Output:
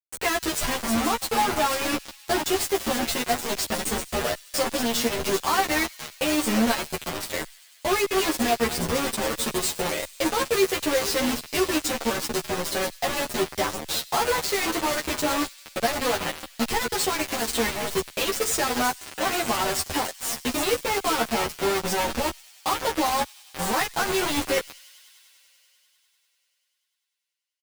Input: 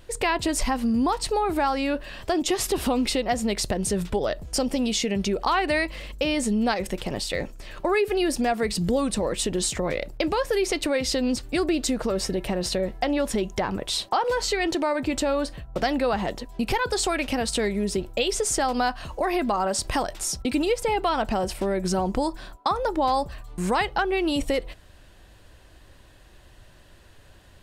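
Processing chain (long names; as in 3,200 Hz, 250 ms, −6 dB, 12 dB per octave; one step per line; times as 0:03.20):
feedback delay that plays each chunk backwards 246 ms, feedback 71%, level −12 dB
low-shelf EQ 270 Hz −3 dB
bit reduction 4 bits
double-tracking delay 13 ms −3 dB
delay with a high-pass on its return 98 ms, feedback 85%, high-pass 3,000 Hz, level −20 dB
barber-pole flanger 7.4 ms +1.1 Hz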